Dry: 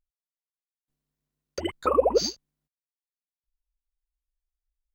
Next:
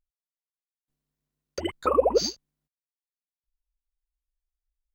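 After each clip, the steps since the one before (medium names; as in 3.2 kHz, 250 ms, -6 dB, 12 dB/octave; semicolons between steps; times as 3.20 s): no audible change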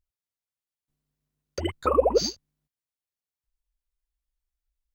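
peaking EQ 90 Hz +9 dB 1.3 oct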